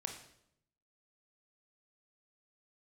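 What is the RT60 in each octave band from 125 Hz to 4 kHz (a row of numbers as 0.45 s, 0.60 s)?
1.1 s, 0.90 s, 0.80 s, 0.70 s, 0.65 s, 0.65 s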